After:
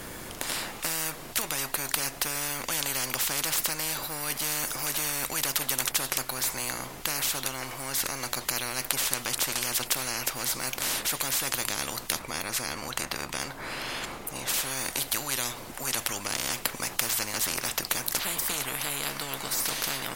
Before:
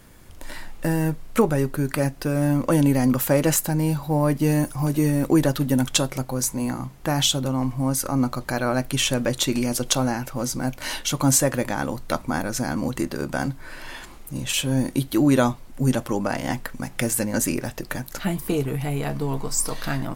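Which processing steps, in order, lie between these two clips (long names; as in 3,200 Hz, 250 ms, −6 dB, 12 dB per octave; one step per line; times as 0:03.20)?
0:12.19–0:14.48: parametric band 15,000 Hz −8 dB 2.3 octaves
every bin compressed towards the loudest bin 10 to 1
level +2 dB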